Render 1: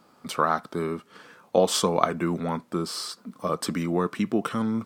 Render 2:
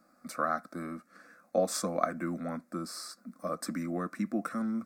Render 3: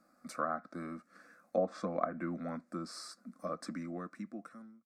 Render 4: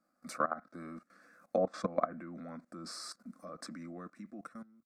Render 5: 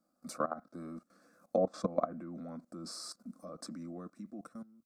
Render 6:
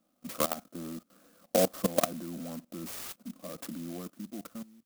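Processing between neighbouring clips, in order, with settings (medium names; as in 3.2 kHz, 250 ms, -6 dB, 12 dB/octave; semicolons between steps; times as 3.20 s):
static phaser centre 620 Hz, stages 8; trim -5 dB
fade out at the end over 1.43 s; low-pass that closes with the level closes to 1.3 kHz, closed at -25.5 dBFS; trim -3.5 dB
level held to a coarse grid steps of 17 dB; trim +6 dB
peaking EQ 1.9 kHz -13 dB 1.2 oct; trim +2 dB
sampling jitter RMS 0.12 ms; trim +4.5 dB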